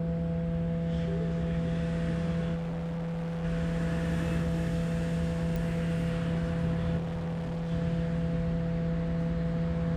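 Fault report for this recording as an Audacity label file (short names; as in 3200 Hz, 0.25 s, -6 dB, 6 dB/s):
2.550000	3.450000	clipped -31.5 dBFS
5.560000	5.560000	pop
6.970000	7.720000	clipped -31 dBFS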